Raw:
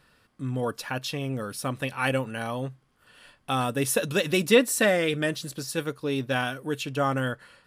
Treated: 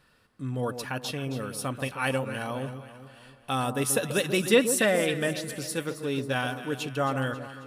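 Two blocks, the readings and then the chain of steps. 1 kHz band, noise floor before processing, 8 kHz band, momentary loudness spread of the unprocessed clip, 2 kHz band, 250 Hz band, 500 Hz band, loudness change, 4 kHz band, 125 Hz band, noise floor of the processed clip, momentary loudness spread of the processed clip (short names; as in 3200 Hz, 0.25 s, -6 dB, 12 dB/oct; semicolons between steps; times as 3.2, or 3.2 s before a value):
-1.5 dB, -66 dBFS, +1.0 dB, 11 LU, -1.5 dB, -1.5 dB, -1.5 dB, -1.0 dB, -1.5 dB, -1.5 dB, -59 dBFS, 11 LU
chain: dynamic EQ 9600 Hz, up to +4 dB, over -47 dBFS, Q 2.1; echo with dull and thin repeats by turns 0.135 s, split 1100 Hz, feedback 69%, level -9 dB; gain -2 dB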